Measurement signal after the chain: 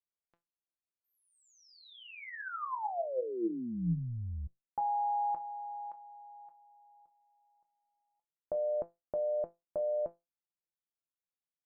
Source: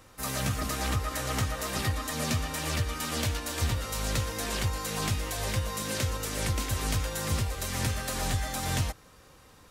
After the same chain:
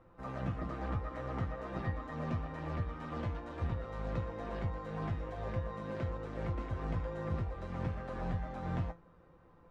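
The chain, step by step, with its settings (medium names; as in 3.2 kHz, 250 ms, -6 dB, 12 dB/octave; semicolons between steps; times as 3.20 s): low-pass 1.1 kHz 12 dB/octave; feedback comb 170 Hz, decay 0.2 s, harmonics all, mix 80%; AM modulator 120 Hz, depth 20%; trim +5.5 dB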